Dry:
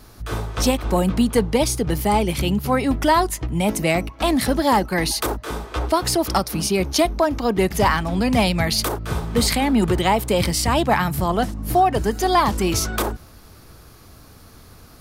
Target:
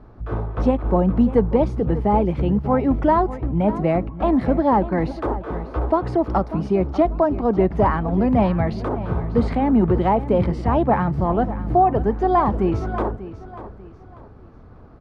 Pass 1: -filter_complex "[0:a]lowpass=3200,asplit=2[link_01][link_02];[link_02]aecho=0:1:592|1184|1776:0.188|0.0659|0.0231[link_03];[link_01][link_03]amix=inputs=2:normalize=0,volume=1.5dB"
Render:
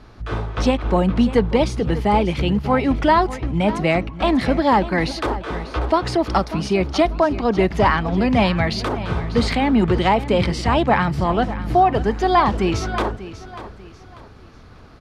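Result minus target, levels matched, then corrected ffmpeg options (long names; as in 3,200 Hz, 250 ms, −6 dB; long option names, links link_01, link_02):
4,000 Hz band +17.0 dB
-filter_complex "[0:a]lowpass=1000,asplit=2[link_01][link_02];[link_02]aecho=0:1:592|1184|1776:0.188|0.0659|0.0231[link_03];[link_01][link_03]amix=inputs=2:normalize=0,volume=1.5dB"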